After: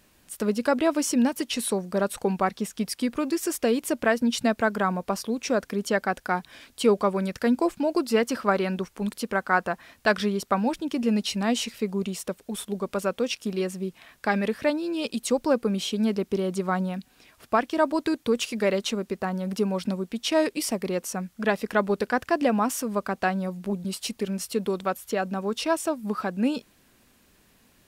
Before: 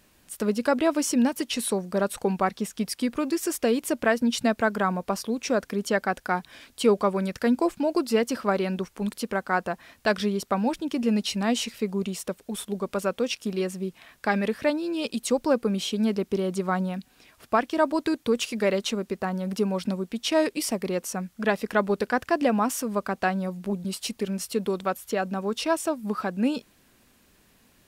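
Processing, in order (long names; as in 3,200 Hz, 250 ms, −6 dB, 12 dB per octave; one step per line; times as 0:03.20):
0:08.05–0:10.60: dynamic equaliser 1,400 Hz, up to +4 dB, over −37 dBFS, Q 1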